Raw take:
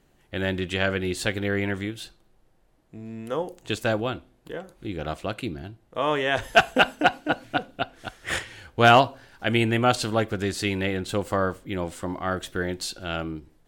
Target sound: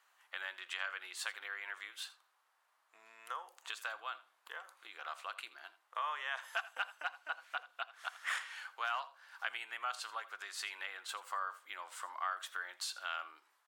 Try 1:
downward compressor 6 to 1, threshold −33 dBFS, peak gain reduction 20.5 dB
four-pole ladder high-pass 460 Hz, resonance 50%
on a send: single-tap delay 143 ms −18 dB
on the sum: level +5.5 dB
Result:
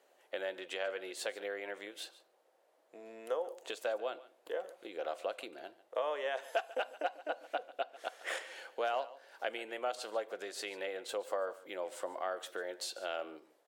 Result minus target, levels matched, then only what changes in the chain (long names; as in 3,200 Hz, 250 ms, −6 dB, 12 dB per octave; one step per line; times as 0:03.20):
500 Hz band +16.5 dB; echo 61 ms late
change: four-pole ladder high-pass 960 Hz, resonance 50%
change: single-tap delay 82 ms −18 dB